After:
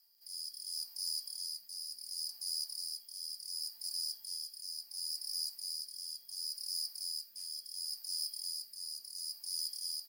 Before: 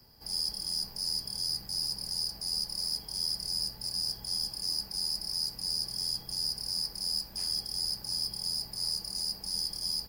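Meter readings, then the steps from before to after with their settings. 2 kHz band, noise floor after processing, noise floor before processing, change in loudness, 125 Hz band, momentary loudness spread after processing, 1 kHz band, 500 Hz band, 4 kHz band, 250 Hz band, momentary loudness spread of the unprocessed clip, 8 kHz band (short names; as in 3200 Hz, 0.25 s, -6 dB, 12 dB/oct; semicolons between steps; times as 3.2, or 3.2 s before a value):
n/a, -59 dBFS, -48 dBFS, -7.5 dB, under -35 dB, 6 LU, under -20 dB, under -25 dB, -8.0 dB, under -30 dB, 2 LU, -3.5 dB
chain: rotary speaker horn 0.7 Hz; crackle 22/s -55 dBFS; differentiator; gain -2.5 dB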